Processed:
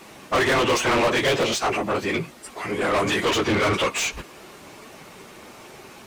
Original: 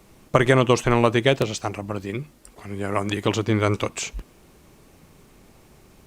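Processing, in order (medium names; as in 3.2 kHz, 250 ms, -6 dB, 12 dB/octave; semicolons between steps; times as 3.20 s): phase randomisation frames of 50 ms; overdrive pedal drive 30 dB, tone 4.1 kHz, clips at -4.5 dBFS; trim -8.5 dB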